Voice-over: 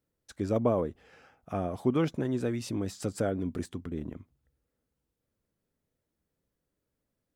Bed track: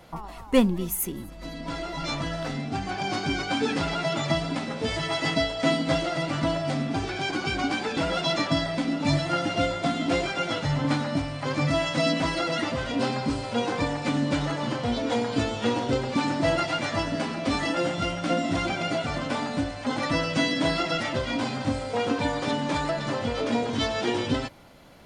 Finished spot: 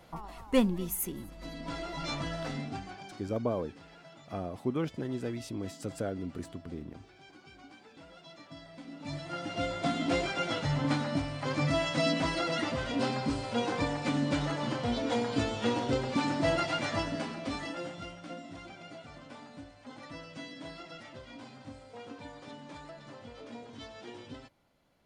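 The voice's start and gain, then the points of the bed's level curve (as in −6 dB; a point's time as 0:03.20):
2.80 s, −5.0 dB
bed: 0:02.63 −5.5 dB
0:03.34 −26.5 dB
0:08.40 −26.5 dB
0:09.88 −4.5 dB
0:16.94 −4.5 dB
0:18.52 −20 dB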